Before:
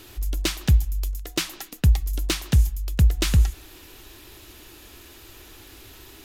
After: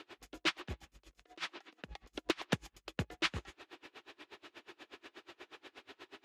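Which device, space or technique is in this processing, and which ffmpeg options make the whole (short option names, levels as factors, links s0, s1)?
helicopter radio: -af "highpass=370,lowpass=2800,aeval=exprs='val(0)*pow(10,-30*(0.5-0.5*cos(2*PI*8.3*n/s))/20)':c=same,asoftclip=type=hard:threshold=0.0708,volume=1.41"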